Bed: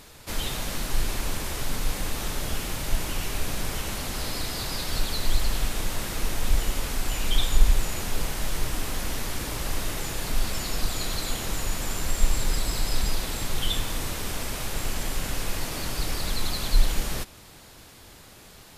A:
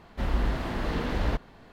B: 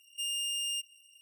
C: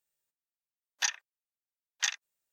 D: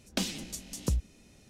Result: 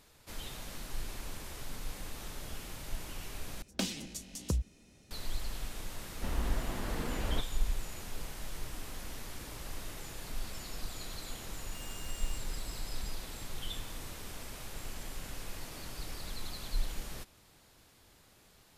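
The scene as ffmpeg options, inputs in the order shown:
-filter_complex "[0:a]volume=-13.5dB[a];[2:a]acompressor=threshold=-45dB:ratio=6:attack=3.2:release=140:knee=1:detection=peak[b];[a]asplit=2[c][d];[c]atrim=end=3.624[e];[4:a]atrim=end=1.49,asetpts=PTS-STARTPTS,volume=-3dB[f];[d]atrim=start=5.106[g];[1:a]atrim=end=1.72,asetpts=PTS-STARTPTS,volume=-8dB,afade=t=in:d=0.004:c=hsin,afade=t=out:st=1.716:d=0.004:c=hsin,adelay=6040[h];[b]atrim=end=1.21,asetpts=PTS-STARTPTS,volume=-6.5dB,afade=t=in:d=0.004:c=hsin,afade=t=out:st=1.206:d=0.004:c=hsin,adelay=11570[i];[e][f]acrossfade=d=0.004:c1=hsin:c2=hsin[j];[j][g]acrossfade=d=0.004:c1=hsin:c2=hsin[k];[k][h][i]amix=inputs=3:normalize=0"

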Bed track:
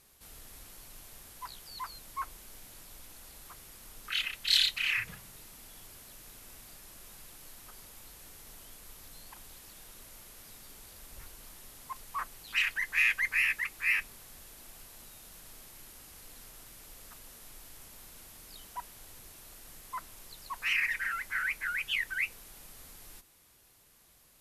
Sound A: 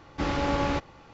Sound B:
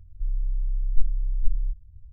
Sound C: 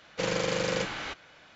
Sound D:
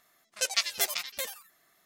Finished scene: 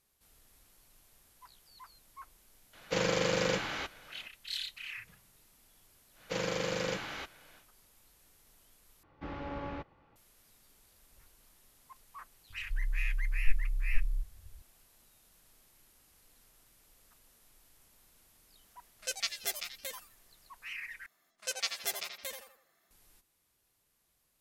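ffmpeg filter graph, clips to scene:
-filter_complex "[3:a]asplit=2[a][b];[4:a]asplit=2[c][d];[0:a]volume=-13dB[e];[1:a]lowpass=2.7k[f];[c]equalizer=f=990:w=5.5:g=-10.5[g];[d]asplit=2[h][i];[i]adelay=81,lowpass=f=2k:p=1,volume=-5dB,asplit=2[j][k];[k]adelay=81,lowpass=f=2k:p=1,volume=0.44,asplit=2[l][m];[m]adelay=81,lowpass=f=2k:p=1,volume=0.44,asplit=2[n][o];[o]adelay=81,lowpass=f=2k:p=1,volume=0.44,asplit=2[p][q];[q]adelay=81,lowpass=f=2k:p=1,volume=0.44[r];[h][j][l][n][p][r]amix=inputs=6:normalize=0[s];[e]asplit=3[t][u][v];[t]atrim=end=9.034[w];[f]atrim=end=1.13,asetpts=PTS-STARTPTS,volume=-13.5dB[x];[u]atrim=start=10.156:end=21.064[y];[s]atrim=end=1.85,asetpts=PTS-STARTPTS,volume=-7dB[z];[v]atrim=start=22.906[aa];[a]atrim=end=1.55,asetpts=PTS-STARTPTS,volume=-1dB,afade=t=in:d=0.004:c=hsin,afade=t=out:st=1.546:d=0.004:c=hsin,adelay=2730[ab];[b]atrim=end=1.55,asetpts=PTS-STARTPTS,volume=-5dB,afade=t=in:d=0.1,afade=t=out:st=1.45:d=0.1,adelay=6120[ac];[2:a]atrim=end=2.12,asetpts=PTS-STARTPTS,volume=-6.5dB,afade=t=in:d=0.004:c=hsin,afade=t=out:st=2.116:d=0.004:c=hsin,adelay=12500[ad];[g]atrim=end=1.85,asetpts=PTS-STARTPTS,volume=-7dB,afade=t=in:d=0.004:c=hsin,afade=t=out:st=1.846:d=0.004:c=hsin,adelay=18660[ae];[w][x]acrossfade=d=0.004:c1=hsin:c2=hsin[af];[af][y]acrossfade=d=0.004:c1=hsin:c2=hsin[ag];[ag][z]acrossfade=d=0.004:c1=hsin:c2=hsin[ah];[ah][aa]acrossfade=d=0.004:c1=hsin:c2=hsin[ai];[ai][ab][ac][ad][ae]amix=inputs=5:normalize=0"

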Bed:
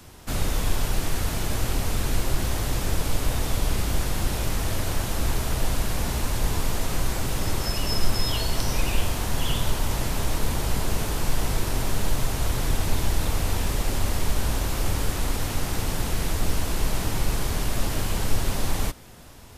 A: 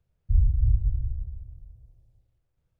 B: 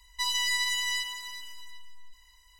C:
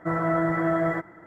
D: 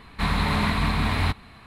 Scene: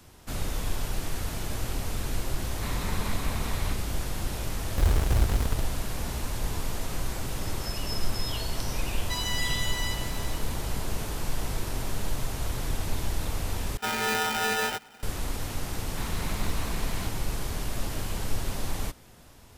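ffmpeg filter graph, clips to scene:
-filter_complex "[4:a]asplit=2[a][b];[0:a]volume=-6dB[c];[1:a]acrusher=bits=5:dc=4:mix=0:aa=0.000001[d];[3:a]aeval=exprs='val(0)*sgn(sin(2*PI*1100*n/s))':c=same[e];[b]acrusher=bits=3:mix=0:aa=0.5[f];[c]asplit=2[g][h];[g]atrim=end=13.774[i];[e]atrim=end=1.26,asetpts=PTS-STARTPTS,volume=-3.5dB[j];[h]atrim=start=15.026[k];[a]atrim=end=1.66,asetpts=PTS-STARTPTS,volume=-12.5dB,afade=t=in:d=0.004:c=hsin,afade=t=out:st=1.656:d=0.004:c=hsin,adelay=2420[l];[d]atrim=end=2.79,asetpts=PTS-STARTPTS,volume=-2.5dB,afade=t=in:d=0.004:c=hsin,afade=t=out:st=2.786:d=0.004:c=hsin,adelay=4480[m];[2:a]atrim=end=2.59,asetpts=PTS-STARTPTS,volume=-4dB,afade=t=in:d=0.004:c=hsin,afade=t=out:st=2.586:d=0.004:c=hsin,adelay=8910[n];[f]atrim=end=1.66,asetpts=PTS-STARTPTS,volume=-15dB,afade=t=in:d=0.004:c=hsin,afade=t=out:st=1.656:d=0.004:c=hsin,adelay=15770[o];[i][j]acrossfade=d=0.004:c1=hsin:c2=hsin[p];[p][k]acrossfade=d=0.004:c1=hsin:c2=hsin[q];[q][l][m][n][o]amix=inputs=5:normalize=0"

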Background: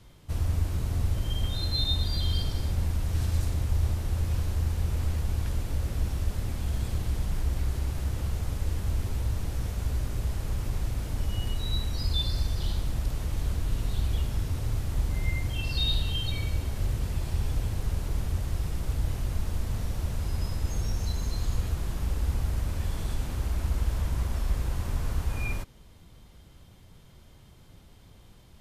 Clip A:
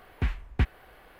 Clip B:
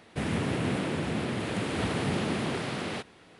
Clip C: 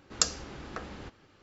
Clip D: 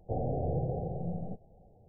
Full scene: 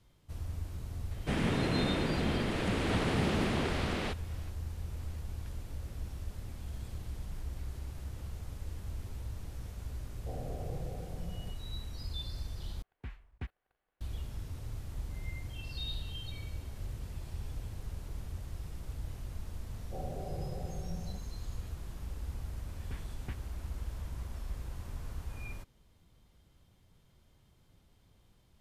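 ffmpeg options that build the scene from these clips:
-filter_complex "[4:a]asplit=2[a][b];[1:a]asplit=2[c][d];[0:a]volume=-12dB[e];[2:a]lowpass=8.6k[f];[c]agate=range=-16dB:threshold=-52dB:ratio=16:release=21:detection=rms[g];[b]aecho=1:1:5.3:0.54[h];[e]asplit=2[i][j];[i]atrim=end=12.824[k];[g]atrim=end=1.19,asetpts=PTS-STARTPTS,volume=-16.5dB[l];[j]atrim=start=14.006[m];[f]atrim=end=3.39,asetpts=PTS-STARTPTS,volume=-1.5dB,afade=t=in:d=0.004:c=hsin,afade=t=out:st=3.386:d=0.004:c=hsin,adelay=1110[n];[a]atrim=end=1.88,asetpts=PTS-STARTPTS,volume=-10dB,afade=t=in:d=0.004:c=hsin,afade=t=out:st=1.876:d=0.004:c=hsin,adelay=10170[o];[h]atrim=end=1.88,asetpts=PTS-STARTPTS,volume=-9.5dB,afade=t=in:d=0.004:c=hsin,afade=t=out:st=1.876:d=0.004:c=hsin,adelay=19830[p];[d]atrim=end=1.19,asetpts=PTS-STARTPTS,volume=-16dB,afade=t=in:d=0.004:c=hsin,afade=t=out:st=1.186:d=0.004:c=hsin,adelay=22690[q];[k][l]acrossfade=d=0.004:c1=hsin:c2=hsin[r];[r][m]acrossfade=d=0.004:c1=hsin:c2=hsin[s];[s][n][o][p][q]amix=inputs=5:normalize=0"

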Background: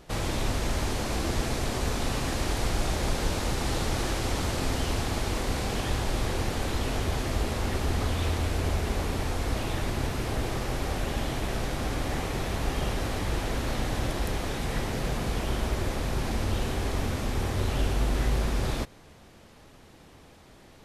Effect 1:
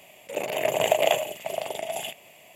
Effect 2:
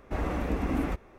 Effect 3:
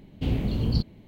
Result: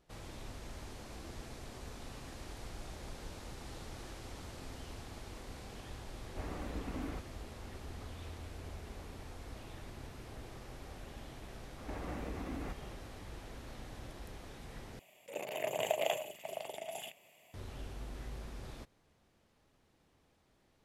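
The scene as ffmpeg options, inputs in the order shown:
-filter_complex "[2:a]asplit=2[a][b];[0:a]volume=-19dB[c];[b]acompressor=threshold=-38dB:ratio=6:attack=3.2:release=140:knee=1:detection=peak[d];[c]asplit=2[e][f];[e]atrim=end=14.994[g];[1:a]atrim=end=2.55,asetpts=PTS-STARTPTS,volume=-12dB[h];[f]atrim=start=17.536[i];[a]atrim=end=1.18,asetpts=PTS-STARTPTS,volume=-12.5dB,afade=t=in:d=0.004:c=hsin,afade=t=out:st=1.176:d=0.004:c=hsin,adelay=6250[j];[d]atrim=end=1.18,asetpts=PTS-STARTPTS,volume=-0.5dB,afade=t=in:d=0.004:c=hsin,afade=t=out:st=1.176:d=0.004:c=hsin,adelay=519498S[k];[g][h]acrossfade=d=0.004:c1=hsin:c2=hsin[l];[l][i]acrossfade=d=0.004:c1=hsin:c2=hsin[m];[m][j][k]amix=inputs=3:normalize=0"

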